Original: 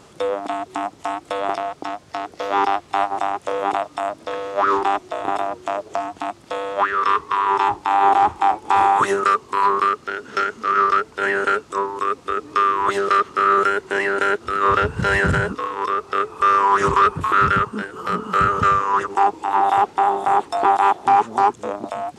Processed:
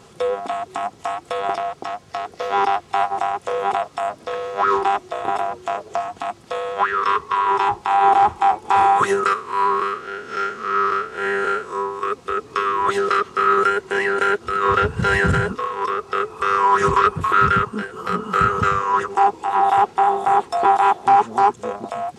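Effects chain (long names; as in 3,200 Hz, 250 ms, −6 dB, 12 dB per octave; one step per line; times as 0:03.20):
0:09.33–0:12.03: spectrum smeared in time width 121 ms
notch comb filter 300 Hz
level +1.5 dB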